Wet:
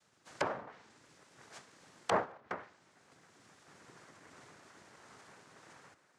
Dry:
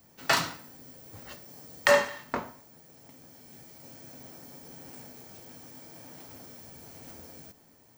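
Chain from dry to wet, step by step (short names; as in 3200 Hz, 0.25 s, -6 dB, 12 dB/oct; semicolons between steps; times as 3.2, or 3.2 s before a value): speed glide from 69% -> 189%; tone controls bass -14 dB, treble -2 dB; noise vocoder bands 3; treble ducked by the level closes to 900 Hz, closed at -27.5 dBFS; gain -5 dB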